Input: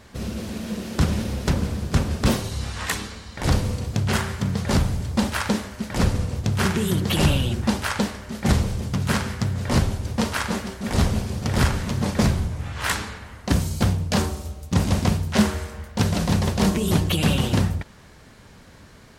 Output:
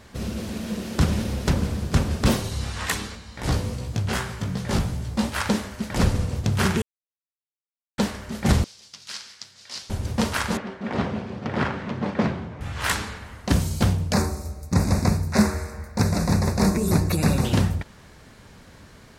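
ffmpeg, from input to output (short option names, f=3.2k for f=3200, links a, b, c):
-filter_complex "[0:a]asplit=3[a][b][c];[a]afade=t=out:st=3.15:d=0.02[d];[b]flanger=delay=16:depth=2.3:speed=2.6,afade=t=in:st=3.15:d=0.02,afade=t=out:st=5.36:d=0.02[e];[c]afade=t=in:st=5.36:d=0.02[f];[d][e][f]amix=inputs=3:normalize=0,asettb=1/sr,asplit=3[g][h][i];[g]atrim=end=8.644[j];[h]atrim=start=8.64:end=9.9,asetpts=PTS-STARTPTS,afade=t=in:d=0.004:c=qsin,afade=t=out:st=1.256:d=0.004:c=qsin,bandpass=f=4.9k:t=q:w=2.1[k];[i]atrim=start=9.896[l];[j][k]acrossfade=d=0.004:c1=hsin:c2=qsin[m];[m][l]acrossfade=d=0.004:c1=qsin:c2=hsin,asettb=1/sr,asplit=3[n][o][p];[n]atrim=end=10.574[q];[o]atrim=start=10.57:end=12.61,asetpts=PTS-STARTPTS,afade=t=in:d=0.004:c=qsin,afade=t=out:st=2.036:d=0.004:c=qsin,highpass=180,lowpass=2.4k[r];[p]atrim=start=12.606[s];[q][r]acrossfade=d=0.004:c1=hsin:c2=qsin[t];[t][s]acrossfade=d=0.004:c1=qsin:c2=hsin,asettb=1/sr,asplit=3[u][v][w];[u]atrim=end=14.124[x];[v]atrim=start=14.12:end=17.45,asetpts=PTS-STARTPTS,afade=t=in:d=0.004:c=qsin,afade=t=out:st=3.326:d=0.004:c=qsin,asuperstop=centerf=3100:order=4:qfactor=2[y];[w]atrim=start=17.446[z];[x][y]acrossfade=d=0.004:c1=hsin:c2=qsin[aa];[aa][z]acrossfade=d=0.004:c1=qsin:c2=hsin,asplit=3[ab][ac][ad];[ab]atrim=end=6.82,asetpts=PTS-STARTPTS,afade=t=out:st=6.816:d=0.004:c=hsin[ae];[ac]atrim=start=6.82:end=7.98,asetpts=PTS-STARTPTS,volume=0[af];[ad]atrim=start=7.98,asetpts=PTS-STARTPTS,afade=t=in:d=0.004:c=hsin[ag];[ae][af][ag]concat=n=3:v=0:a=1"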